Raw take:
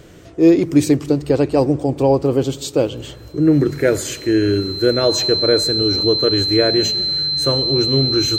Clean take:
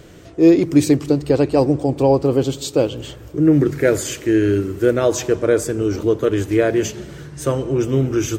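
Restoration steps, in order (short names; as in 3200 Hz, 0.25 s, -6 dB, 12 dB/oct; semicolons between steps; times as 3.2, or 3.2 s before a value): notch 4100 Hz, Q 30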